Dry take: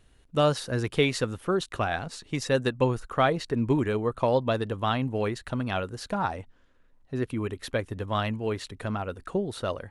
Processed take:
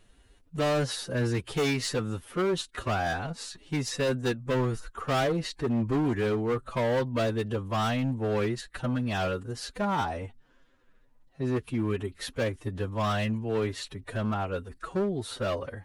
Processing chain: overload inside the chain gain 24.5 dB; time stretch by phase-locked vocoder 1.6×; trim +1.5 dB

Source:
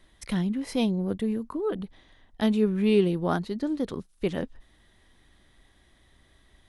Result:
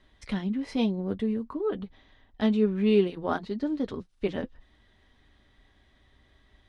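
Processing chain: low-pass 4.8 kHz 12 dB/octave; comb of notches 170 Hz

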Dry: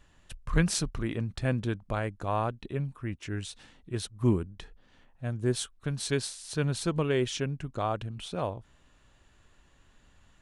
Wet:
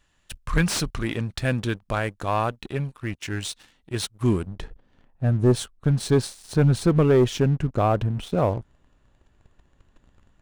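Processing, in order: tilt shelf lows -3.5 dB, about 1.2 kHz, from 4.46 s lows +5.5 dB; waveshaping leveller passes 2; slew-rate limiter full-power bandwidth 320 Hz

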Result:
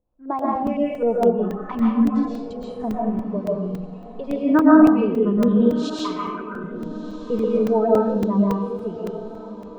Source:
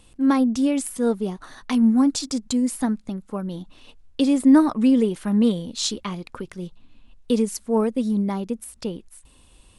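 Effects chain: backward echo that repeats 105 ms, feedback 45%, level -13 dB; spectral noise reduction 21 dB; 5.48–6.64 s: RIAA curve recording; LFO low-pass saw up 3.9 Hz 540–1800 Hz; on a send: echo that smears into a reverb 1288 ms, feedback 52%, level -16 dB; on the sum: algorithmic reverb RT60 0.81 s, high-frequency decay 0.8×, pre-delay 90 ms, DRR -5 dB; crackling interface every 0.28 s, samples 128, zero, from 0.39 s; trim -2 dB

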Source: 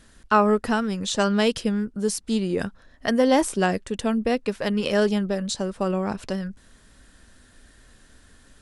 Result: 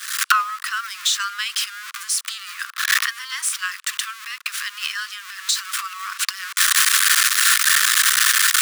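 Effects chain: jump at every zero crossing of -28.5 dBFS; recorder AGC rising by 73 dB/s; steep high-pass 1.1 kHz 96 dB/octave; trim +2 dB

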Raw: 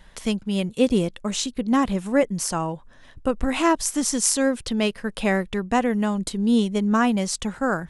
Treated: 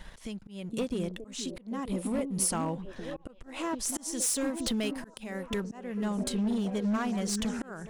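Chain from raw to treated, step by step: compression 12:1, threshold -31 dBFS, peak gain reduction 18.5 dB; waveshaping leveller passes 1; 3.89–5.61 s: treble shelf 6.7 kHz +9.5 dB; repeats whose band climbs or falls 466 ms, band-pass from 270 Hz, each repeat 0.7 oct, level -4 dB; slow attack 333 ms; overload inside the chain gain 25 dB; 1.85–2.52 s: graphic EQ with 31 bands 1.6 kHz -8 dB, 6.3 kHz -4 dB, 10 kHz +11 dB

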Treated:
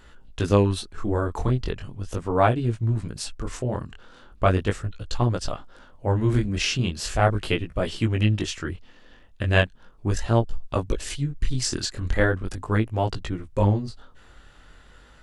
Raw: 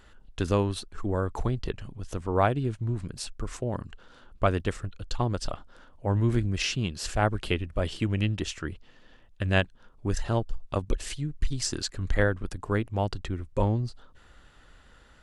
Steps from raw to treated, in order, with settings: chorus 0.38 Hz, delay 17 ms, depth 7.3 ms; trim +7 dB

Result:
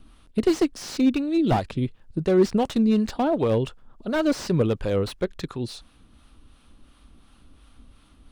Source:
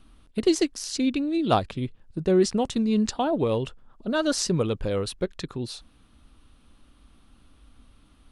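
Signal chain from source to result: harmonic tremolo 2.8 Hz, depth 50%, crossover 580 Hz; slew-rate limiter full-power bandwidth 49 Hz; trim +5 dB

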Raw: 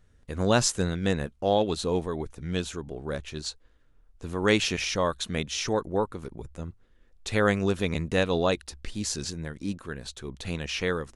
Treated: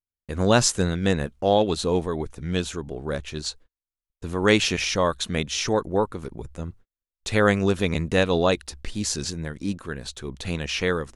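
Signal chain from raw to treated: gate -48 dBFS, range -43 dB; trim +4 dB

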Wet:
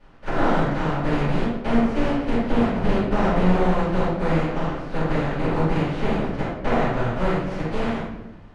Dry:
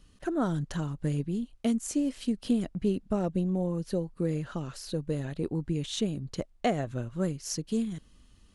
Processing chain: spectral contrast reduction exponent 0.25; de-esser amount 45%; low-pass 1.3 kHz 12 dB/octave; de-hum 50.68 Hz, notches 37; reverberation RT60 0.85 s, pre-delay 3 ms, DRR -12 dB; trim -3.5 dB

